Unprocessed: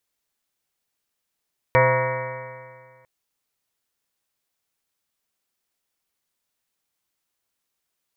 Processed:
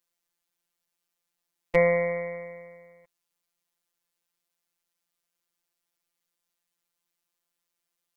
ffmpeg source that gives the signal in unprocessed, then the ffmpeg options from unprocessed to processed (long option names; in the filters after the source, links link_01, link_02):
-f lavfi -i "aevalsrc='0.1*pow(10,-3*t/1.9)*sin(2*PI*126.21*t)+0.0141*pow(10,-3*t/1.9)*sin(2*PI*253.71*t)+0.02*pow(10,-3*t/1.9)*sin(2*PI*383.74*t)+0.178*pow(10,-3*t/1.9)*sin(2*PI*517.53*t)+0.0562*pow(10,-3*t/1.9)*sin(2*PI*656.23*t)+0.0141*pow(10,-3*t/1.9)*sin(2*PI*800.93*t)+0.119*pow(10,-3*t/1.9)*sin(2*PI*952.64*t)+0.0531*pow(10,-3*t/1.9)*sin(2*PI*1112.28*t)+0.0224*pow(10,-3*t/1.9)*sin(2*PI*1280.67*t)+0.0355*pow(10,-3*t/1.9)*sin(2*PI*1458.56*t)+0.02*pow(10,-3*t/1.9)*sin(2*PI*1646.6*t)+0.0794*pow(10,-3*t/1.9)*sin(2*PI*1845.38*t)+0.0422*pow(10,-3*t/1.9)*sin(2*PI*2055.41*t)+0.0562*pow(10,-3*t/1.9)*sin(2*PI*2277.13*t)':duration=1.3:sample_rate=44100"
-af "afftfilt=real='hypot(re,im)*cos(PI*b)':imag='0':win_size=1024:overlap=0.75"